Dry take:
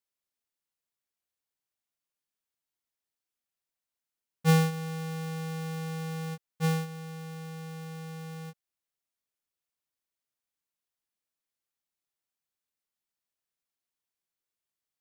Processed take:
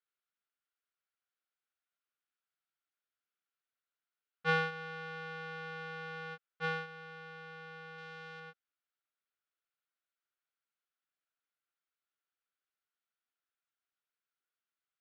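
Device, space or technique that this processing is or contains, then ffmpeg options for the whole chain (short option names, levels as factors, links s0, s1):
phone earpiece: -filter_complex "[0:a]highpass=390,equalizer=f=560:t=q:w=4:g=-4,equalizer=f=920:t=q:w=4:g=-6,equalizer=f=1400:t=q:w=4:g=10,lowpass=f=3800:w=0.5412,lowpass=f=3800:w=1.3066,asettb=1/sr,asplit=3[s0][s1][s2];[s0]atrim=end=7.984[s3];[s1]atrim=start=7.98:end=8.4,asetpts=PTS-STARTPTS,afade=t=in:d=0.004:c=qsin,afade=t=out:st=0.416:d=0.004:c=qsin,highshelf=f=3800:g=7[s4];[s2]atrim=start=8.396[s5];[s3][s4]acrossfade=d=0.004:c1=hsin:c2=qsin[s6];[s6][s5]acrossfade=d=0.004:c1=qsin:c2=hsin,volume=0.794"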